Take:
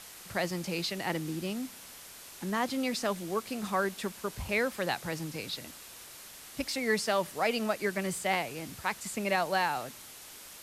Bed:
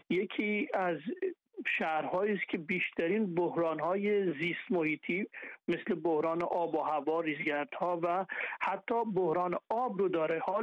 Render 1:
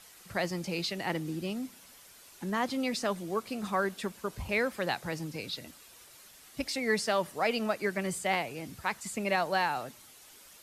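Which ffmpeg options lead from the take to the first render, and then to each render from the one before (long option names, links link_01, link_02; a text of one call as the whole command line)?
ffmpeg -i in.wav -af "afftdn=noise_reduction=8:noise_floor=-49" out.wav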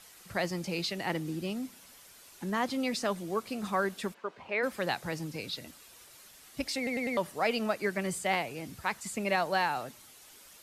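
ffmpeg -i in.wav -filter_complex "[0:a]asplit=3[link_01][link_02][link_03];[link_01]afade=type=out:start_time=4.13:duration=0.02[link_04];[link_02]highpass=370,lowpass=2500,afade=type=in:start_time=4.13:duration=0.02,afade=type=out:start_time=4.62:duration=0.02[link_05];[link_03]afade=type=in:start_time=4.62:duration=0.02[link_06];[link_04][link_05][link_06]amix=inputs=3:normalize=0,asplit=5[link_07][link_08][link_09][link_10][link_11];[link_07]atrim=end=6.872[link_12];[link_08]atrim=start=6.768:end=6.872[link_13];[link_09]atrim=start=6.768:end=6.872[link_14];[link_10]atrim=start=6.768:end=6.872[link_15];[link_11]atrim=start=7.168[link_16];[link_12][link_13]acrossfade=duration=0.004:curve1=hsin:curve2=hsin[link_17];[link_17][link_14]acrossfade=duration=0.004:curve1=hsin:curve2=hsin[link_18];[link_18][link_15]acrossfade=duration=0.004:curve1=hsin:curve2=hsin[link_19];[link_19][link_16]acrossfade=duration=0.004:curve1=hsin:curve2=hsin" out.wav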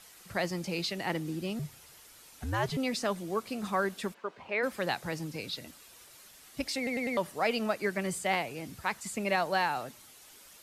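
ffmpeg -i in.wav -filter_complex "[0:a]asettb=1/sr,asplit=3[link_01][link_02][link_03];[link_01]atrim=end=1.594[link_04];[link_02]atrim=start=1.59:end=2.77,asetpts=PTS-STARTPTS,afade=type=in:duration=0.004:curve=qsin,afade=type=out:start_time=1.176:duration=0.004:curve=qsin,afreqshift=-110[link_05];[link_03]atrim=start=2.766[link_06];[link_04][link_05]acrossfade=duration=0.004:curve1=hsin:curve2=qsin[link_07];[link_07][link_06]acrossfade=duration=0.004:curve1=qsin:curve2=hsin" out.wav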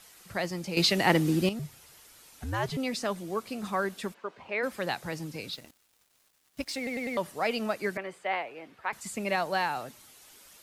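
ffmpeg -i in.wav -filter_complex "[0:a]asettb=1/sr,asplit=3[link_01][link_02][link_03];[link_01]atrim=end=5.534[link_04];[link_02]atrim=start=5.53:end=7.16,asetpts=PTS-STARTPTS,afade=type=in:duration=0.004:curve=qsin,afade=type=out:start_time=1.626:duration=0.004:curve=qsin,aeval=exprs='sgn(val(0))*max(abs(val(0))-0.00299,0)':channel_layout=same[link_05];[link_03]atrim=start=7.156[link_06];[link_04][link_05]acrossfade=duration=0.004:curve1=hsin:curve2=qsin[link_07];[link_07][link_06]acrossfade=duration=0.004:curve1=qsin:curve2=hsin,asettb=1/sr,asplit=3[link_08][link_09][link_10];[link_08]atrim=end=7.974[link_11];[link_09]atrim=start=7.97:end=8.93,asetpts=PTS-STARTPTS,afade=type=in:duration=0.004:curve=qsin,afade=type=out:start_time=0.956:duration=0.004:curve=qsin,acrossover=split=340 3100:gain=0.1 1 0.0794[link_12][link_13][link_14];[link_12][link_13][link_14]amix=inputs=3:normalize=0[link_15];[link_10]atrim=start=8.926[link_16];[link_11][link_15]acrossfade=duration=0.004:curve1=hsin:curve2=qsin[link_17];[link_17][link_16]acrossfade=duration=0.004:curve1=qsin:curve2=hsin,asplit=3[link_18][link_19][link_20];[link_18]atrim=end=0.772[link_21];[link_19]atrim=start=0.768:end=1.492,asetpts=PTS-STARTPTS,volume=10dB[link_22];[link_20]atrim=start=1.488[link_23];[link_21][link_22]acrossfade=duration=0.004:curve1=hsin:curve2=hsin[link_24];[link_24][link_23]acrossfade=duration=0.004:curve1=hsin:curve2=hsin" out.wav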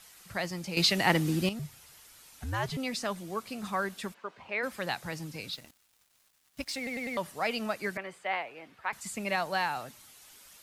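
ffmpeg -i in.wav -af "equalizer=frequency=390:width_type=o:width=1.6:gain=-5" out.wav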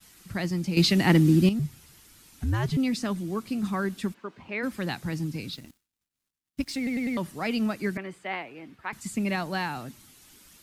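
ffmpeg -i in.wav -af "agate=range=-33dB:threshold=-55dB:ratio=3:detection=peak,lowshelf=frequency=410:width_type=q:width=1.5:gain=9" out.wav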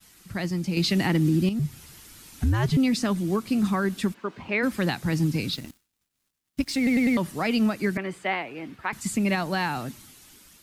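ffmpeg -i in.wav -af "dynaudnorm=framelen=310:gausssize=7:maxgain=7.5dB,alimiter=limit=-15dB:level=0:latency=1:release=317" out.wav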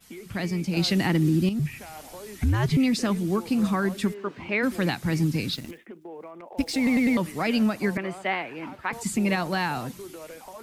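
ffmpeg -i in.wav -i bed.wav -filter_complex "[1:a]volume=-10.5dB[link_01];[0:a][link_01]amix=inputs=2:normalize=0" out.wav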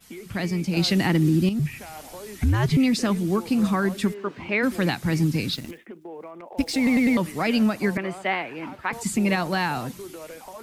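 ffmpeg -i in.wav -af "volume=2dB" out.wav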